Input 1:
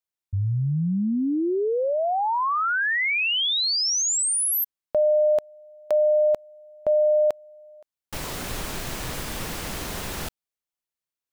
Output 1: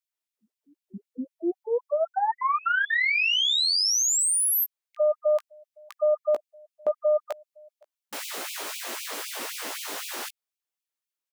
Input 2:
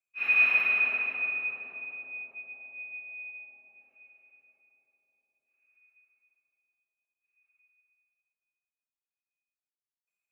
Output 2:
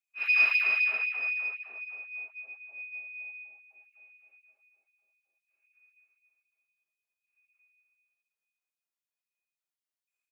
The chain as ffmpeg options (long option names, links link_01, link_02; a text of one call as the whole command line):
ffmpeg -i in.wav -filter_complex "[0:a]bass=frequency=250:gain=-6,treble=frequency=4000:gain=0,aeval=exprs='0.211*(cos(1*acos(clip(val(0)/0.211,-1,1)))-cos(1*PI/2))+0.0299*(cos(2*acos(clip(val(0)/0.211,-1,1)))-cos(2*PI/2))':channel_layout=same,asplit=2[link_01][link_02];[link_02]adelay=17,volume=-6dB[link_03];[link_01][link_03]amix=inputs=2:normalize=0,afftfilt=real='re*gte(b*sr/1024,200*pow(2300/200,0.5+0.5*sin(2*PI*3.9*pts/sr)))':imag='im*gte(b*sr/1024,200*pow(2300/200,0.5+0.5*sin(2*PI*3.9*pts/sr)))':win_size=1024:overlap=0.75,volume=-1dB" out.wav